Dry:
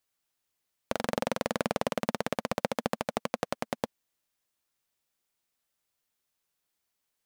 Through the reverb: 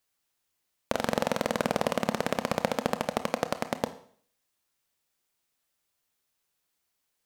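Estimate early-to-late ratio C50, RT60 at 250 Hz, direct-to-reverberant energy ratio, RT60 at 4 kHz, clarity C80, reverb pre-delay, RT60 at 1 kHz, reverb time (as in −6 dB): 14.0 dB, 0.55 s, 10.5 dB, 0.55 s, 17.0 dB, 24 ms, 0.55 s, 0.55 s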